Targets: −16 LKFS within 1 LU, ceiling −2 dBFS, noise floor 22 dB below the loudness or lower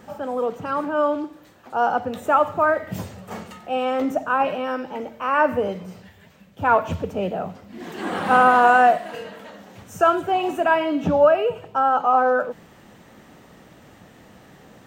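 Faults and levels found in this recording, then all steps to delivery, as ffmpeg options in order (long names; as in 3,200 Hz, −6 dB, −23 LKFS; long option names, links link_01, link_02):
integrated loudness −20.5 LKFS; sample peak −4.5 dBFS; target loudness −16.0 LKFS
→ -af "volume=4.5dB,alimiter=limit=-2dB:level=0:latency=1"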